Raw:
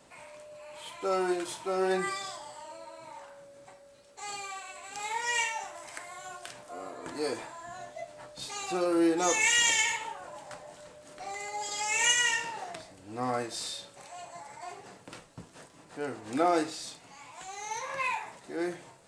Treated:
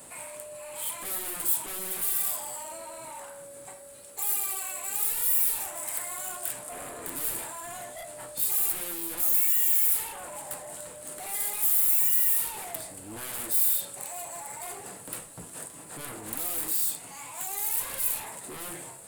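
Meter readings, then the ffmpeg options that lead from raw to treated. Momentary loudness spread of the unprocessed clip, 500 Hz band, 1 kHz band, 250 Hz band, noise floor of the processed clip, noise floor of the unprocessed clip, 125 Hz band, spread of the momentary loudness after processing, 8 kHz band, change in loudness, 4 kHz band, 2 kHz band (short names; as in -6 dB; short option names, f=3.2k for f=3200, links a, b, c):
22 LU, -9.0 dB, -6.5 dB, -12.5 dB, -46 dBFS, -56 dBFS, n/a, 20 LU, +4.5 dB, +4.5 dB, -8.0 dB, -10.5 dB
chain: -af "aeval=exprs='(tanh(35.5*val(0)+0.15)-tanh(0.15))/35.5':c=same,aeval=exprs='0.0335*sin(PI/2*3.55*val(0)/0.0335)':c=same,aexciter=amount=13.8:drive=2.4:freq=8.3k,volume=-8.5dB"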